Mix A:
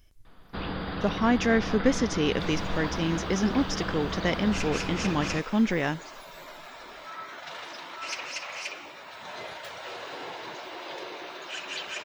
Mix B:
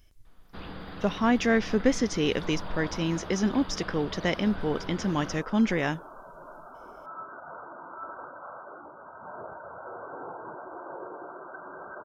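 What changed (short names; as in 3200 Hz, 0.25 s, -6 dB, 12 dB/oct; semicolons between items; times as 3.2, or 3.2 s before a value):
first sound -8.0 dB; second sound: add brick-wall FIR low-pass 1600 Hz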